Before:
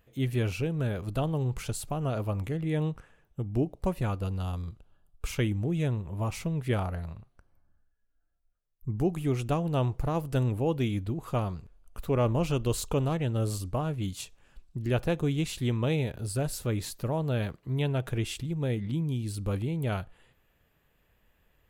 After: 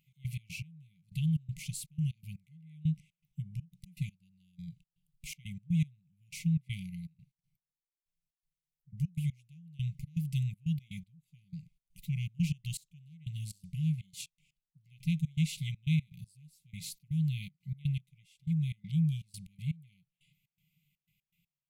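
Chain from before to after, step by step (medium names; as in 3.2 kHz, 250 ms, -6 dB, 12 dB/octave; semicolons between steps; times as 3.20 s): resonant low shelf 110 Hz -13 dB, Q 3; trance gate "x.x.x....xx.xx" 121 bpm -24 dB; brick-wall FIR band-stop 190–2000 Hz; trim -3.5 dB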